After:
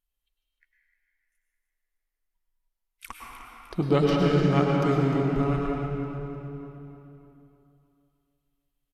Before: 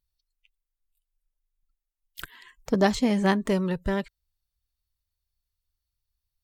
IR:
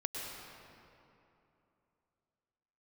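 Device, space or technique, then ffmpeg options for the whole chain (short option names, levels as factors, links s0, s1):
slowed and reverbed: -filter_complex "[0:a]equalizer=f=130:w=1.4:g=-7,equalizer=f=9800:w=0.46:g=-4.5,bandreject=f=431.4:t=h:w=4,bandreject=f=862.8:t=h:w=4,bandreject=f=1294.2:t=h:w=4,bandreject=f=1725.6:t=h:w=4,bandreject=f=2157:t=h:w=4,bandreject=f=2588.4:t=h:w=4,bandreject=f=3019.8:t=h:w=4,bandreject=f=3451.2:t=h:w=4,bandreject=f=3882.6:t=h:w=4,bandreject=f=4314:t=h:w=4,bandreject=f=4745.4:t=h:w=4,bandreject=f=5176.8:t=h:w=4,bandreject=f=5608.2:t=h:w=4,bandreject=f=6039.6:t=h:w=4,bandreject=f=6471:t=h:w=4,bandreject=f=6902.4:t=h:w=4,bandreject=f=7333.8:t=h:w=4,bandreject=f=7765.2:t=h:w=4,bandreject=f=8196.6:t=h:w=4,bandreject=f=8628:t=h:w=4,bandreject=f=9059.4:t=h:w=4,bandreject=f=9490.8:t=h:w=4,bandreject=f=9922.2:t=h:w=4,bandreject=f=10353.6:t=h:w=4,bandreject=f=10785:t=h:w=4,bandreject=f=11216.4:t=h:w=4,bandreject=f=11647.8:t=h:w=4,bandreject=f=12079.2:t=h:w=4,bandreject=f=12510.6:t=h:w=4,bandreject=f=12942:t=h:w=4,bandreject=f=13373.4:t=h:w=4,bandreject=f=13804.8:t=h:w=4,bandreject=f=14236.2:t=h:w=4,bandreject=f=14667.6:t=h:w=4,asetrate=31752,aresample=44100[s0];[1:a]atrim=start_sample=2205[s1];[s0][s1]afir=irnorm=-1:irlink=0,aecho=1:1:304|608|912|1216|1520:0.282|0.141|0.0705|0.0352|0.0176"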